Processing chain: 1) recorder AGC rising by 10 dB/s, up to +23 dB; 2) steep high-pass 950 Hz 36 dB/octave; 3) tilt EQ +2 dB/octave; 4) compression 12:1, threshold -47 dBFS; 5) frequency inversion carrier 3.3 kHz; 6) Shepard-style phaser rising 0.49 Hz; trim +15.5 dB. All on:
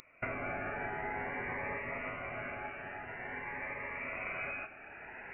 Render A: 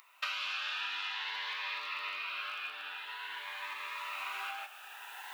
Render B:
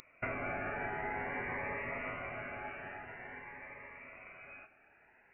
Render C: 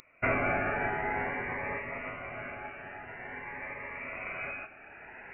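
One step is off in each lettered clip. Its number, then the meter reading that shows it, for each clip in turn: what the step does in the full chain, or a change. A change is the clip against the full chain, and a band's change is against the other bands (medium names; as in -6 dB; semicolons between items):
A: 5, 4 kHz band +24.5 dB; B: 1, momentary loudness spread change +7 LU; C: 4, mean gain reduction 2.0 dB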